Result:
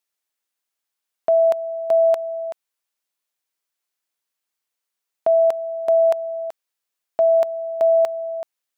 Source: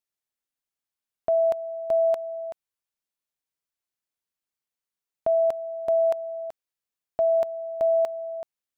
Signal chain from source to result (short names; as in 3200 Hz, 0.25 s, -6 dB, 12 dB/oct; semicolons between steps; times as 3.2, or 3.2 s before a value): HPF 470 Hz 6 dB/oct; gain +7.5 dB